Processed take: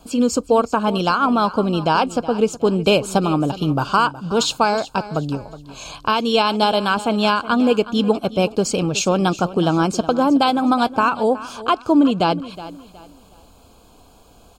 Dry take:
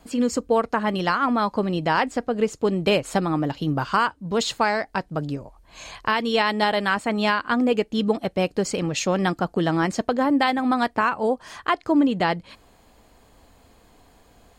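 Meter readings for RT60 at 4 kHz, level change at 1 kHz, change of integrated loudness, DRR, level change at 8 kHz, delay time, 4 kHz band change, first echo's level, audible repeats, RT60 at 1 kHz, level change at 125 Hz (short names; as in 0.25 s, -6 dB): none, +4.5 dB, +4.5 dB, none, +6.5 dB, 0.368 s, +5.5 dB, -16.0 dB, 2, none, +4.5 dB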